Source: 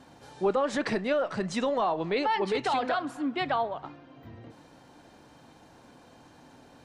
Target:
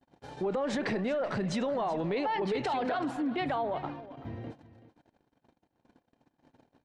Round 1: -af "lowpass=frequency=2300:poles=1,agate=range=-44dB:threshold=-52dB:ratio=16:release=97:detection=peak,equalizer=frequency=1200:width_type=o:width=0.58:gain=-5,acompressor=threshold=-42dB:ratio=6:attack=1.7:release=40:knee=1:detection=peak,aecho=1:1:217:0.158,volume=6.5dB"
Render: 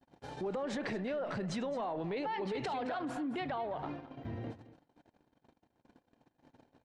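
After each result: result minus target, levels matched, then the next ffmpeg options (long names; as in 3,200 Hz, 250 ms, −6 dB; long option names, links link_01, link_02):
echo 162 ms early; downward compressor: peak gain reduction +6 dB
-af "lowpass=frequency=2300:poles=1,agate=range=-44dB:threshold=-52dB:ratio=16:release=97:detection=peak,equalizer=frequency=1200:width_type=o:width=0.58:gain=-5,acompressor=threshold=-42dB:ratio=6:attack=1.7:release=40:knee=1:detection=peak,aecho=1:1:379:0.158,volume=6.5dB"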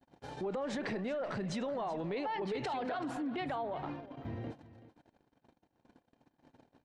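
downward compressor: peak gain reduction +6 dB
-af "lowpass=frequency=2300:poles=1,agate=range=-44dB:threshold=-52dB:ratio=16:release=97:detection=peak,equalizer=frequency=1200:width_type=o:width=0.58:gain=-5,acompressor=threshold=-35dB:ratio=6:attack=1.7:release=40:knee=1:detection=peak,aecho=1:1:379:0.158,volume=6.5dB"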